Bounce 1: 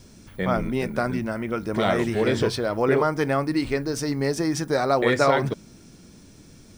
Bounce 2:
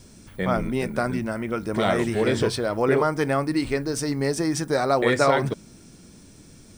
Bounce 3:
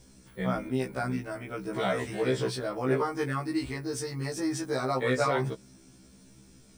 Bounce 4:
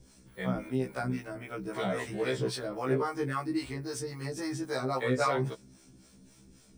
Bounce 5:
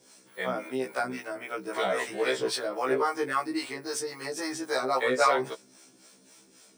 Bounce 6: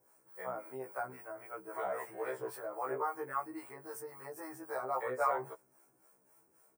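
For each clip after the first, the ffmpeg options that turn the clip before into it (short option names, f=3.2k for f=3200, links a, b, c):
-af "equalizer=f=8.5k:t=o:w=0.33:g=6.5"
-af "afftfilt=real='re*1.73*eq(mod(b,3),0)':imag='im*1.73*eq(mod(b,3),0)':win_size=2048:overlap=0.75,volume=-4.5dB"
-filter_complex "[0:a]acrossover=split=510[a][b];[a]aeval=exprs='val(0)*(1-0.7/2+0.7/2*cos(2*PI*3.7*n/s))':c=same[c];[b]aeval=exprs='val(0)*(1-0.7/2-0.7/2*cos(2*PI*3.7*n/s))':c=same[d];[c][d]amix=inputs=2:normalize=0,volume=1dB"
-af "highpass=440,volume=6.5dB"
-af "firequalizer=gain_entry='entry(120,0);entry(220,-17);entry(320,-7);entry(880,1);entry(3600,-27);entry(14000,10)':delay=0.05:min_phase=1,volume=-6dB"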